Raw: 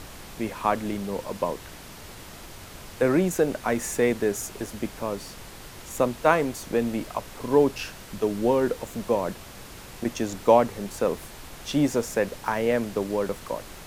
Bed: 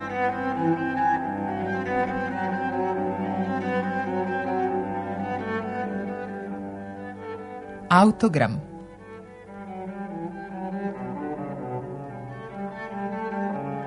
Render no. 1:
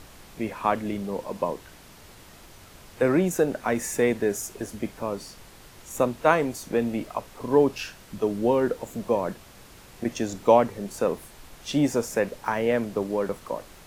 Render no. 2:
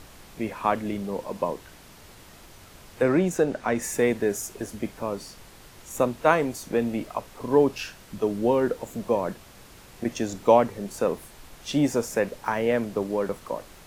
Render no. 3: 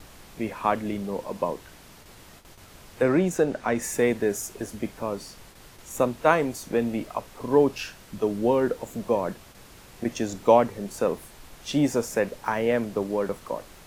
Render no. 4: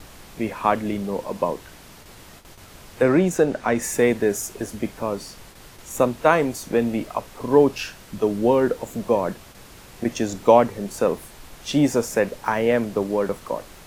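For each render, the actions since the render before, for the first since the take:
noise print and reduce 6 dB
3.02–3.81 s: peaking EQ 13 kHz -7 dB -> -13 dB 0.72 oct
gate with hold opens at -38 dBFS
trim +4 dB; peak limiter -2 dBFS, peak gain reduction 2 dB

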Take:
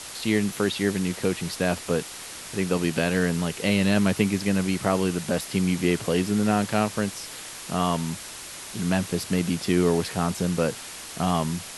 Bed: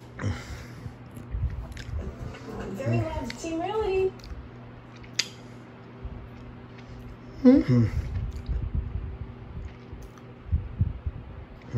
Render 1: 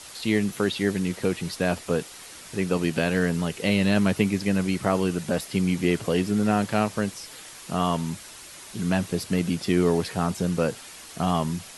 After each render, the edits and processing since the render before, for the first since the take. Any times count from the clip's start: noise reduction 6 dB, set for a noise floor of -39 dBFS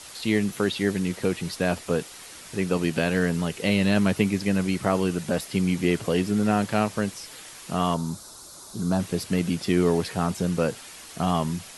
7.94–9.00 s: high-order bell 2.3 kHz -15 dB 1.1 oct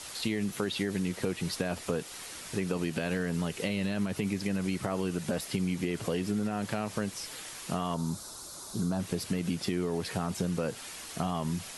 peak limiter -14.5 dBFS, peak gain reduction 8 dB; compression, threshold -27 dBFS, peak gain reduction 8 dB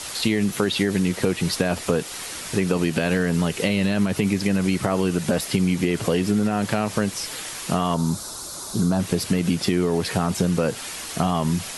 trim +10 dB

